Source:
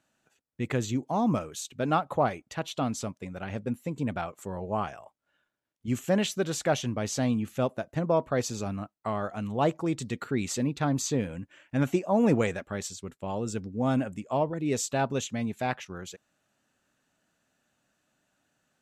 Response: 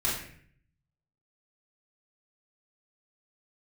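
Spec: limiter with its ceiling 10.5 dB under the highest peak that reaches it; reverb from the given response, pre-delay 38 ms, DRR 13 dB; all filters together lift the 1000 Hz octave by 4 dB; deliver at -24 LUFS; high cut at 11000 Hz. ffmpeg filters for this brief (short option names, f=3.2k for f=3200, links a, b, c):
-filter_complex "[0:a]lowpass=11k,equalizer=f=1k:t=o:g=5.5,alimiter=limit=-20dB:level=0:latency=1,asplit=2[a][b];[1:a]atrim=start_sample=2205,adelay=38[c];[b][c]afir=irnorm=-1:irlink=0,volume=-22dB[d];[a][d]amix=inputs=2:normalize=0,volume=8dB"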